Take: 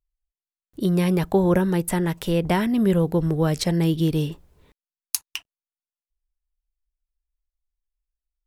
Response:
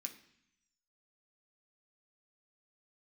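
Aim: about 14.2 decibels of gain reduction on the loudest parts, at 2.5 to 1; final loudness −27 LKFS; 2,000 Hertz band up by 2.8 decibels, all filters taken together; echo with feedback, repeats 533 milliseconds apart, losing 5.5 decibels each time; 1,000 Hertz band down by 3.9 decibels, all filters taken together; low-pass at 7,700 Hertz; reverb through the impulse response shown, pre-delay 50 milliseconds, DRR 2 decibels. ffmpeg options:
-filter_complex "[0:a]lowpass=7700,equalizer=frequency=1000:width_type=o:gain=-6,equalizer=frequency=2000:width_type=o:gain=5,acompressor=threshold=-38dB:ratio=2.5,aecho=1:1:533|1066|1599|2132|2665|3198|3731:0.531|0.281|0.149|0.079|0.0419|0.0222|0.0118,asplit=2[link_01][link_02];[1:a]atrim=start_sample=2205,adelay=50[link_03];[link_02][link_03]afir=irnorm=-1:irlink=0,volume=2dB[link_04];[link_01][link_04]amix=inputs=2:normalize=0,volume=5.5dB"

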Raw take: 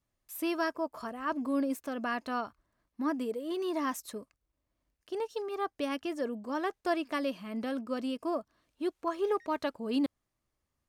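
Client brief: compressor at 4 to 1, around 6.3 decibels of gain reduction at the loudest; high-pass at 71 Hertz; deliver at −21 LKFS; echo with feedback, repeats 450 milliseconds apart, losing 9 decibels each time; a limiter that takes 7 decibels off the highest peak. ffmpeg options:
ffmpeg -i in.wav -af "highpass=71,acompressor=threshold=-33dB:ratio=4,alimiter=level_in=7.5dB:limit=-24dB:level=0:latency=1,volume=-7.5dB,aecho=1:1:450|900|1350|1800:0.355|0.124|0.0435|0.0152,volume=19.5dB" out.wav

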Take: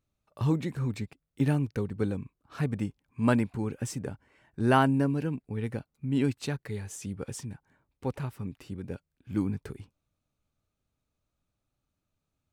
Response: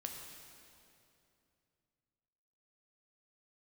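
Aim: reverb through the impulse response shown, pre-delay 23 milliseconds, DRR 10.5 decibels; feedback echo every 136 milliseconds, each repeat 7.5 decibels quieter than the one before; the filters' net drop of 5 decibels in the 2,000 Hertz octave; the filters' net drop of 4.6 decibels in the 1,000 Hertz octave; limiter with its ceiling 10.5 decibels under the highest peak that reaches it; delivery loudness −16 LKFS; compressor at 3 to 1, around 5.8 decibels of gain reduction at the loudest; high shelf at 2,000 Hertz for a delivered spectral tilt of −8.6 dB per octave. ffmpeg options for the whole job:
-filter_complex "[0:a]equalizer=frequency=1000:width_type=o:gain=-4.5,highshelf=frequency=2000:gain=-3.5,equalizer=frequency=2000:width_type=o:gain=-3,acompressor=threshold=-28dB:ratio=3,alimiter=level_in=5.5dB:limit=-24dB:level=0:latency=1,volume=-5.5dB,aecho=1:1:136|272|408|544|680:0.422|0.177|0.0744|0.0312|0.0131,asplit=2[link_01][link_02];[1:a]atrim=start_sample=2205,adelay=23[link_03];[link_02][link_03]afir=irnorm=-1:irlink=0,volume=-9dB[link_04];[link_01][link_04]amix=inputs=2:normalize=0,volume=23dB"

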